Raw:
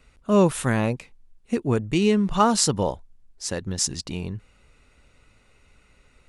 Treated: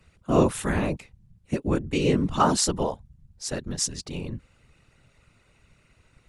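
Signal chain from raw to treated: whisperiser; gain -2.5 dB

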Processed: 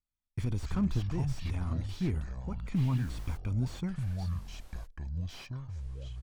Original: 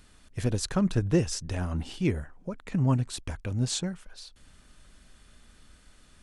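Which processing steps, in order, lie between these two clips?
gate -44 dBFS, range -38 dB; low shelf 100 Hz +5 dB; comb 0.9 ms, depth 58%; limiter -16 dBFS, peak gain reduction 6.5 dB; 0.99–1.89 level quantiser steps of 9 dB; 2.75–3.36 added noise pink -48 dBFS; echoes that change speed 97 ms, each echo -6 st, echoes 2, each echo -6 dB; slew limiter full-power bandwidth 31 Hz; gain -6 dB

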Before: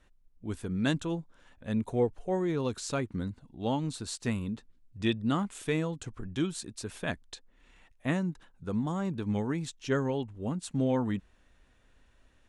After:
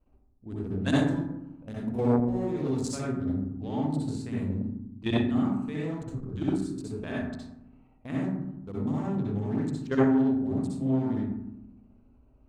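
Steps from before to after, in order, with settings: Wiener smoothing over 25 samples; 0.89–2.95 high shelf 5800 Hz +7.5 dB; level quantiser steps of 13 dB; reverb RT60 0.85 s, pre-delay 60 ms, DRR -6.5 dB; core saturation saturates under 460 Hz

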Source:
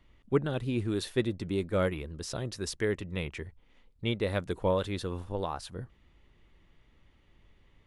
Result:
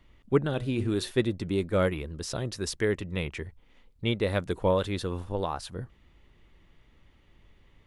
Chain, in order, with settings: 0.53–1.11 de-hum 122.5 Hz, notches 30; gain +3 dB

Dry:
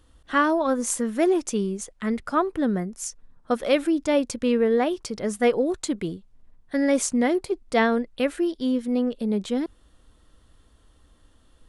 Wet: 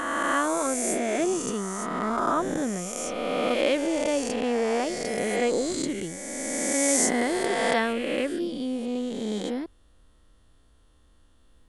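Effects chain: spectral swells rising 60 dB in 2.72 s; 5.88–7.93 high shelf 4500 Hz +8.5 dB; gain -7 dB

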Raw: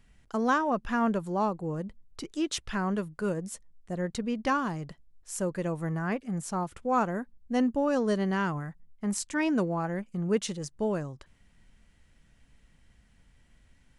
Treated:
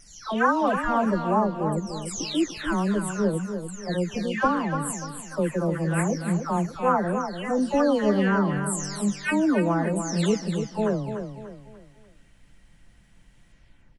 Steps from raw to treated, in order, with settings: spectral delay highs early, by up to 0.464 s; feedback echo 0.294 s, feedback 38%, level -8 dB; gain +6 dB

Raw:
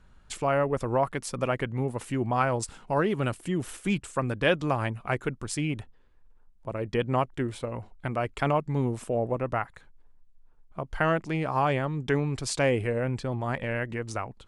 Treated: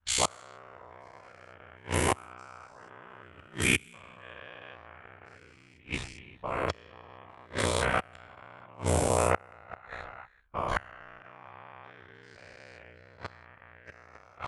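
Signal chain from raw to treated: spectral dilation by 0.48 s; tilt shelf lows -8 dB, about 710 Hz; expander -43 dBFS; on a send: echo 0.393 s -20 dB; on the sum: flipped gate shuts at -10 dBFS, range -29 dB; low-pass opened by the level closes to 2100 Hz, open at -24 dBFS; ring modulator 31 Hz; bell 84 Hz +12.5 dB 1.2 oct

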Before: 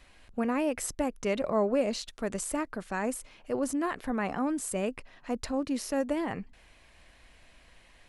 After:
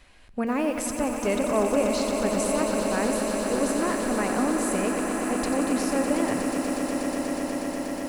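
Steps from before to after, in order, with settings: on a send: swelling echo 0.121 s, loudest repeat 8, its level -10 dB; on the sum: lo-fi delay 90 ms, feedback 80%, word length 8-bit, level -9 dB; gain +2.5 dB

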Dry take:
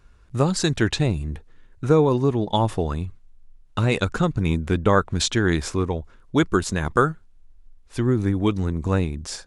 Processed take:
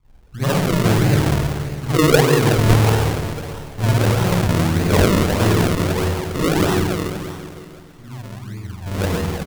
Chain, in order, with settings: 6.74–8.83 passive tone stack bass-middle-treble 6-0-2; bands offset in time lows, highs 30 ms, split 320 Hz; spring tank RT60 2.3 s, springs 46/55 ms, chirp 50 ms, DRR -9.5 dB; decimation with a swept rate 38×, swing 100% 1.6 Hz; on a send: feedback echo 0.282 s, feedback 53%, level -17 dB; on the sum: gain -4 dB

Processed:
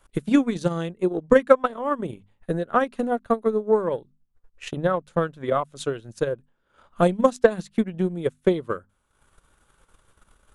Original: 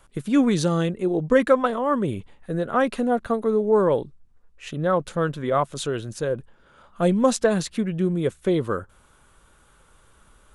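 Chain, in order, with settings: notches 50/100/150/200/250 Hz; transient shaper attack +11 dB, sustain -10 dB; gain -5.5 dB

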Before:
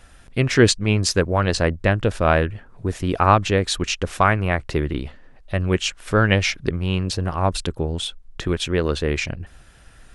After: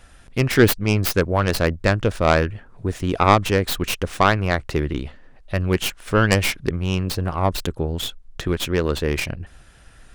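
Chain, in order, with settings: tracing distortion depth 0.34 ms

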